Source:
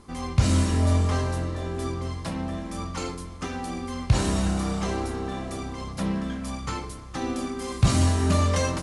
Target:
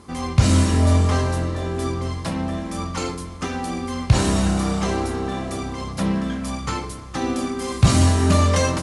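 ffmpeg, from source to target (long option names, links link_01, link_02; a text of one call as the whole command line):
ffmpeg -i in.wav -af "highpass=54,volume=5.5dB" out.wav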